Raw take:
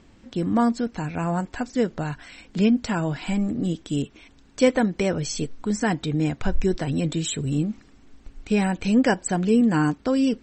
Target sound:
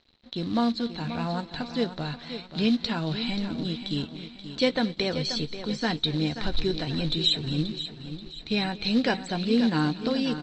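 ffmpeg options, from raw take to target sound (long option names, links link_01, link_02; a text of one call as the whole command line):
ffmpeg -i in.wav -filter_complex "[0:a]asplit=2[link_01][link_02];[link_02]adelay=13,volume=-12.5dB[link_03];[link_01][link_03]amix=inputs=2:normalize=0,asplit=2[link_04][link_05];[link_05]aecho=0:1:532|1064|1596|2128|2660:0.299|0.131|0.0578|0.0254|0.0112[link_06];[link_04][link_06]amix=inputs=2:normalize=0,aeval=exprs='sgn(val(0))*max(abs(val(0))-0.00299,0)':channel_layout=same,asplit=2[link_07][link_08];[link_08]aecho=0:1:227:0.106[link_09];[link_07][link_09]amix=inputs=2:normalize=0,acrusher=bits=6:mode=log:mix=0:aa=0.000001,lowpass=frequency=4000:width_type=q:width=11,volume=-5.5dB" out.wav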